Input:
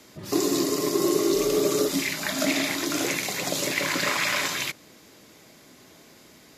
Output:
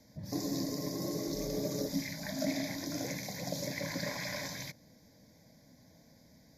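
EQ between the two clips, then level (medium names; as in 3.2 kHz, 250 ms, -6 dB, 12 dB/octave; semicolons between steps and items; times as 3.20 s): high-order bell 1.7 kHz -12 dB 2.9 oct; treble shelf 4.4 kHz -9.5 dB; static phaser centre 1.9 kHz, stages 8; 0.0 dB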